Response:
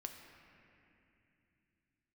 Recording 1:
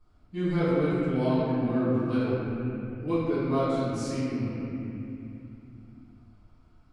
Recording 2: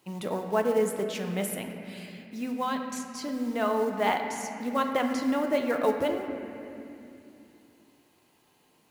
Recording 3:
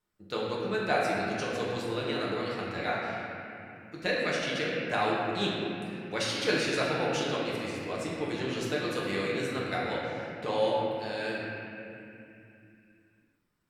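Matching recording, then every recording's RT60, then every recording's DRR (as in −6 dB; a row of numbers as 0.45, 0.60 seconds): 2; 2.8, 2.8, 2.8 seconds; −15.0, 3.5, −6.5 decibels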